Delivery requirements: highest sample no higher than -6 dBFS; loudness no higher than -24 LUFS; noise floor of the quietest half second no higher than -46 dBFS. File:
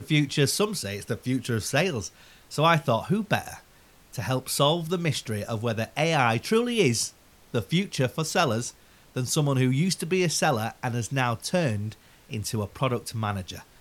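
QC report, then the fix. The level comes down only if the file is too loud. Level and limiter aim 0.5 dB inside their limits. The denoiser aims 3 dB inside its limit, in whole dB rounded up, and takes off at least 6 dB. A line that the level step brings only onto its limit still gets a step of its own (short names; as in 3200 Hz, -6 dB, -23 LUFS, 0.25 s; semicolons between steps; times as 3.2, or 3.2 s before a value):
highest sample -7.0 dBFS: OK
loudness -26.0 LUFS: OK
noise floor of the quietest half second -56 dBFS: OK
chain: none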